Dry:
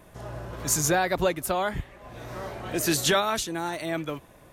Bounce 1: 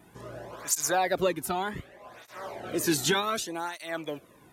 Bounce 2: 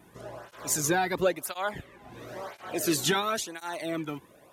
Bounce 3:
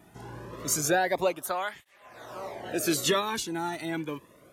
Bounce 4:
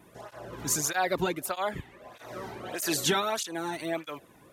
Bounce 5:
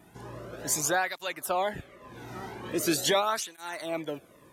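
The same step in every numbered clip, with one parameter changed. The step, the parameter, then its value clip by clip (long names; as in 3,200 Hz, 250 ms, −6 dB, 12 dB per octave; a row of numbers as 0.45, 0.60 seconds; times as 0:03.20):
through-zero flanger with one copy inverted, nulls at: 0.66, 0.97, 0.27, 1.6, 0.42 Hertz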